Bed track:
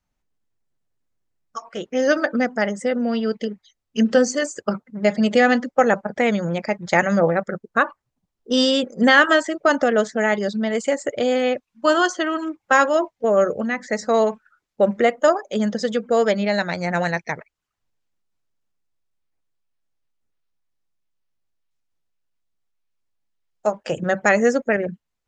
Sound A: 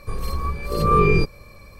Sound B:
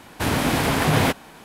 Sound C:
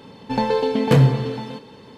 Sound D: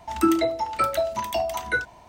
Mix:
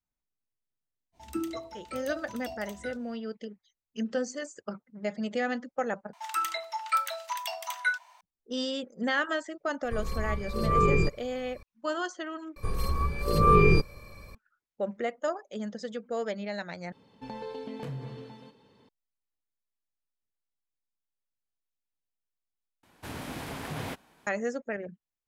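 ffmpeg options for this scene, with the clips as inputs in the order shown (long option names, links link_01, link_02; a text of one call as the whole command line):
ffmpeg -i bed.wav -i cue0.wav -i cue1.wav -i cue2.wav -i cue3.wav -filter_complex "[4:a]asplit=2[link_01][link_02];[1:a]asplit=2[link_03][link_04];[0:a]volume=-14.5dB[link_05];[link_01]equalizer=frequency=1100:width_type=o:width=1.7:gain=-9[link_06];[link_02]highpass=frequency=950:width=0.5412,highpass=frequency=950:width=1.3066[link_07];[link_03]highshelf=frequency=9900:gain=-6.5[link_08];[3:a]acompressor=threshold=-16dB:ratio=6:attack=3.2:release=140:knee=1:detection=peak[link_09];[link_05]asplit=5[link_10][link_11][link_12][link_13][link_14];[link_10]atrim=end=6.134[link_15];[link_07]atrim=end=2.08,asetpts=PTS-STARTPTS,volume=-2.5dB[link_16];[link_11]atrim=start=8.206:end=12.564[link_17];[link_04]atrim=end=1.79,asetpts=PTS-STARTPTS,volume=-3dB[link_18];[link_12]atrim=start=14.346:end=16.924[link_19];[link_09]atrim=end=1.97,asetpts=PTS-STARTPTS,volume=-17.5dB[link_20];[link_13]atrim=start=18.886:end=22.834[link_21];[2:a]atrim=end=1.44,asetpts=PTS-STARTPTS,volume=-17.5dB[link_22];[link_14]atrim=start=24.266[link_23];[link_06]atrim=end=2.08,asetpts=PTS-STARTPTS,volume=-11.5dB,afade=type=in:duration=0.05,afade=type=out:start_time=2.03:duration=0.05,adelay=1120[link_24];[link_08]atrim=end=1.79,asetpts=PTS-STARTPTS,volume=-7dB,afade=type=in:duration=0.004:curve=hsin,afade=type=out:start_time=1.786:duration=0.004:curve=hsin,adelay=9840[link_25];[link_15][link_16]acrossfade=duration=0.004:curve1=hsin:curve2=hsin[link_26];[link_26][link_17]acrossfade=duration=0.004:curve1=hsin:curve2=hsin[link_27];[link_27][link_18]acrossfade=duration=0.004:curve1=hsin:curve2=hsin[link_28];[link_28][link_19]acrossfade=duration=0.004:curve1=hsin:curve2=hsin[link_29];[link_29][link_20]acrossfade=duration=0.004:curve1=hsin:curve2=hsin[link_30];[link_30][link_21]acrossfade=duration=0.004:curve1=hsin:curve2=hsin[link_31];[link_31][link_22]acrossfade=duration=0.004:curve1=hsin:curve2=hsin[link_32];[link_32][link_23]acrossfade=duration=0.004:curve1=hsin:curve2=hsin[link_33];[link_33][link_24][link_25]amix=inputs=3:normalize=0" out.wav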